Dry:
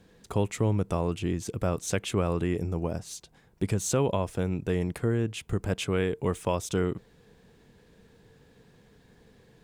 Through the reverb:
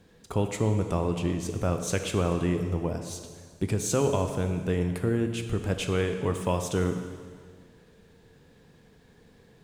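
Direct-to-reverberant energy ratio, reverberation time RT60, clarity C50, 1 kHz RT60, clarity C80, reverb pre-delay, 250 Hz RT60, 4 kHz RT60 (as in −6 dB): 6.0 dB, 1.8 s, 7.5 dB, 1.8 s, 8.5 dB, 6 ms, 1.8 s, 1.7 s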